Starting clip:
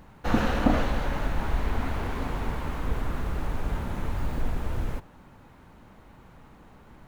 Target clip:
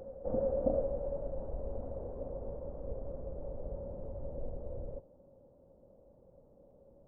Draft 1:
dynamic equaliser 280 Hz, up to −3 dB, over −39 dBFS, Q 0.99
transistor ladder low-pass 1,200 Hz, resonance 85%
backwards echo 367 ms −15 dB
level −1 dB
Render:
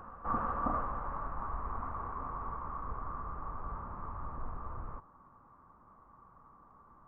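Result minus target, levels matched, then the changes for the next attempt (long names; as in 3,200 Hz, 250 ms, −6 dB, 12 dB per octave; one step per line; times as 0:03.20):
1,000 Hz band +16.5 dB
change: transistor ladder low-pass 570 Hz, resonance 85%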